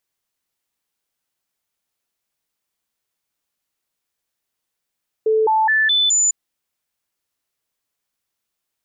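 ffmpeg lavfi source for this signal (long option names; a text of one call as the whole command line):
ffmpeg -f lavfi -i "aevalsrc='0.224*clip(min(mod(t,0.21),0.21-mod(t,0.21))/0.005,0,1)*sin(2*PI*438*pow(2,floor(t/0.21)/1)*mod(t,0.21))':duration=1.05:sample_rate=44100" out.wav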